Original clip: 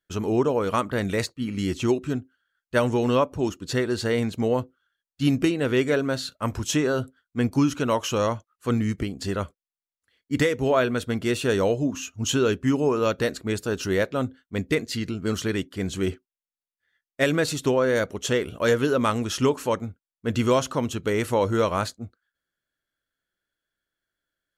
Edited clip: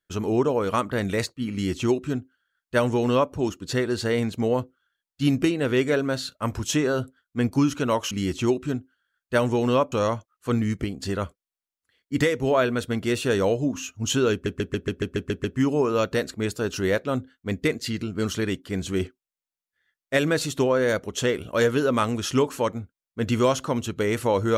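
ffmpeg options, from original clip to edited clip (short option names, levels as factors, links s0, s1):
-filter_complex "[0:a]asplit=11[s0][s1][s2][s3][s4][s5][s6][s7][s8][s9][s10];[s0]atrim=end=8.112[s11];[s1]atrim=start=1.518:end=3.332[s12];[s2]atrim=start=8.108:end=12.652[s13];[s3]atrim=start=12.508:end=12.652[s14];[s4]atrim=start=12.508:end=12.652[s15];[s5]atrim=start=12.508:end=12.652[s16];[s6]atrim=start=12.508:end=12.652[s17];[s7]atrim=start=12.508:end=12.652[s18];[s8]atrim=start=12.508:end=12.652[s19];[s9]atrim=start=12.508:end=12.652[s20];[s10]atrim=start=12.508[s21];[s11][s12]acrossfade=d=0.004:c1=hsin:c2=hsin[s22];[s22][s13]acrossfade=d=0.004:c1=hsin:c2=hsin[s23];[s23][s14]acrossfade=d=0.004:c1=hsin:c2=hsin[s24];[s24][s15]acrossfade=d=0.004:c1=hsin:c2=hsin[s25];[s25][s16]acrossfade=d=0.004:c1=hsin:c2=hsin[s26];[s26][s17]acrossfade=d=0.004:c1=hsin:c2=hsin[s27];[s27][s18]acrossfade=d=0.004:c1=hsin:c2=hsin[s28];[s28][s19]acrossfade=d=0.004:c1=hsin:c2=hsin[s29];[s29][s20]acrossfade=d=0.004:c1=hsin:c2=hsin[s30];[s30][s21]acrossfade=d=0.004:c1=hsin:c2=hsin"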